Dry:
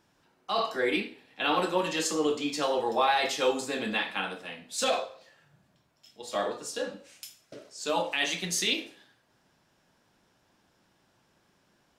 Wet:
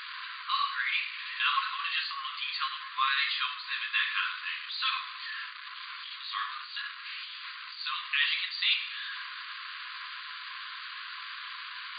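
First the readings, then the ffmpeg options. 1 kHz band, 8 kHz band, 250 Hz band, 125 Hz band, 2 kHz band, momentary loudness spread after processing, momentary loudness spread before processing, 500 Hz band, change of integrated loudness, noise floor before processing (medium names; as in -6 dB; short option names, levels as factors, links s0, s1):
-3.0 dB, under -40 dB, under -40 dB, under -40 dB, +3.5 dB, 12 LU, 16 LU, under -40 dB, -3.0 dB, -69 dBFS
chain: -af "aeval=exprs='val(0)+0.5*0.0299*sgn(val(0))':c=same,afftfilt=real='re*between(b*sr/4096,1000,4800)':imag='im*between(b*sr/4096,1000,4800)':win_size=4096:overlap=0.75"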